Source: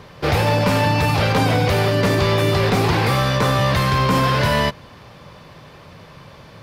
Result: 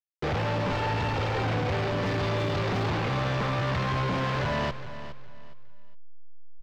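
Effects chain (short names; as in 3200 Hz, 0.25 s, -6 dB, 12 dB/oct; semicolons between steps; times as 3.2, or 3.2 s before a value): 0.72–1.43 minimum comb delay 2.2 ms; 2.01–2.89 high shelf 7800 Hz +12 dB; soft clip -23 dBFS, distortion -8 dB; bit-crush 5-bit; backlash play -30.5 dBFS; air absorption 190 m; feedback echo 0.413 s, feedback 27%, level -13 dB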